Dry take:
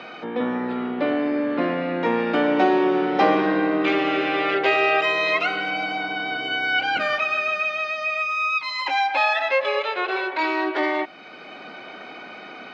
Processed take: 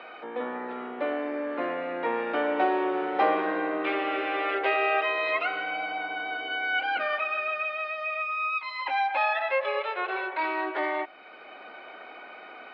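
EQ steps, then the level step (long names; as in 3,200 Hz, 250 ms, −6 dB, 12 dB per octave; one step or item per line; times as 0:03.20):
high-pass filter 460 Hz 12 dB per octave
high-frequency loss of the air 330 metres
−2.5 dB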